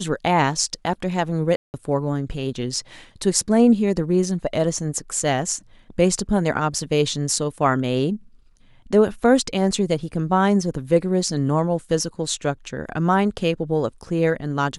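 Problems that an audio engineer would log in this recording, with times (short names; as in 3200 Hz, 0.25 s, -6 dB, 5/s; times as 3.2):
1.56–1.74 gap 0.179 s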